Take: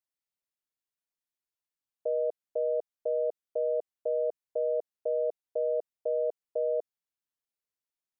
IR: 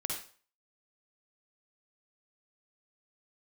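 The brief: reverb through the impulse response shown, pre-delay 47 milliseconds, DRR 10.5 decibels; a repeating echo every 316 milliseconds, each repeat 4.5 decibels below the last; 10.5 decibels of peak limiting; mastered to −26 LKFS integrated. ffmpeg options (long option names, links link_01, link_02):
-filter_complex "[0:a]alimiter=level_in=8.5dB:limit=-24dB:level=0:latency=1,volume=-8.5dB,aecho=1:1:316|632|948|1264|1580|1896|2212|2528|2844:0.596|0.357|0.214|0.129|0.0772|0.0463|0.0278|0.0167|0.01,asplit=2[link_01][link_02];[1:a]atrim=start_sample=2205,adelay=47[link_03];[link_02][link_03]afir=irnorm=-1:irlink=0,volume=-13dB[link_04];[link_01][link_04]amix=inputs=2:normalize=0,volume=14.5dB"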